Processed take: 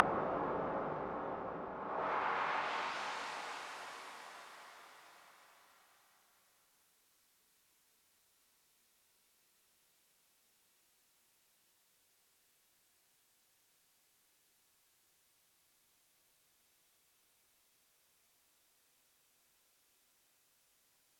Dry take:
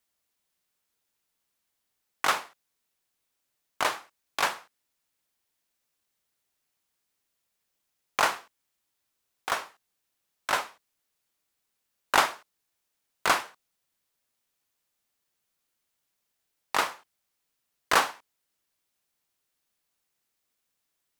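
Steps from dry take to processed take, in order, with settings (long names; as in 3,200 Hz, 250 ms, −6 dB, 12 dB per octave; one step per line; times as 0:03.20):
extreme stretch with random phases 20×, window 0.50 s, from 0:02.39
treble cut that deepens with the level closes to 410 Hz, closed at −34 dBFS
level +8 dB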